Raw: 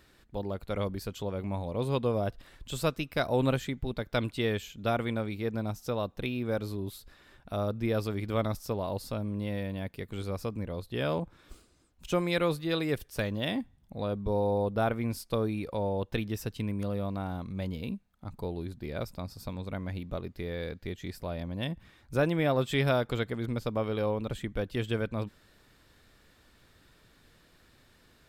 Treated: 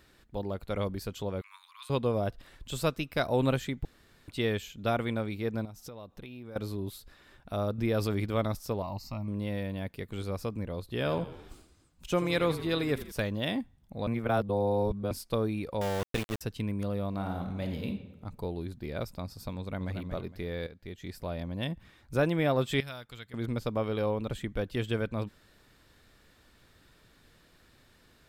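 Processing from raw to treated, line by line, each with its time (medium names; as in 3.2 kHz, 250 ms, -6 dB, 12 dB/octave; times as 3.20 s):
1.41–1.90 s: steep high-pass 1.1 kHz 72 dB/octave
3.85–4.28 s: room tone
5.65–6.56 s: compression, threshold -41 dBFS
7.78–8.26 s: level flattener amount 50%
8.82–9.28 s: static phaser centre 2.3 kHz, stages 8
10.80–13.12 s: frequency-shifting echo 83 ms, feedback 60%, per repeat -40 Hz, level -14 dB
14.07–15.11 s: reverse
15.81–16.41 s: small samples zeroed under -32 dBFS
17.09–17.86 s: reverb throw, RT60 1.1 s, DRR 3.5 dB
19.57–19.97 s: echo throw 230 ms, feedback 30%, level -7.5 dB
20.67–21.25 s: fade in, from -12.5 dB
22.80–23.34 s: amplifier tone stack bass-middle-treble 5-5-5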